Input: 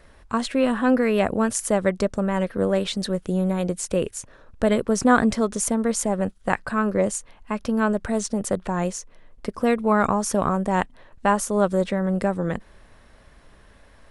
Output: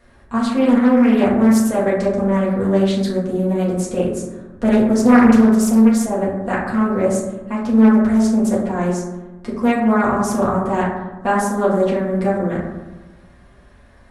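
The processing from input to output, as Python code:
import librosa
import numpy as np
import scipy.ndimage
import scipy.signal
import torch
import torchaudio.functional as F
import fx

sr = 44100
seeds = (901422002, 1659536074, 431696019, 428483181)

y = fx.quant_float(x, sr, bits=6)
y = fx.rev_fdn(y, sr, rt60_s=1.1, lf_ratio=1.4, hf_ratio=0.35, size_ms=25.0, drr_db=-7.5)
y = fx.doppler_dist(y, sr, depth_ms=0.46)
y = y * 10.0 ** (-5.5 / 20.0)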